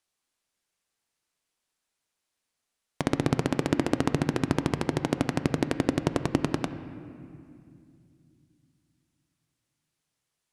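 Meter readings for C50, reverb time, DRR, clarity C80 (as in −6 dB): 11.0 dB, 2.4 s, 10.0 dB, 12.0 dB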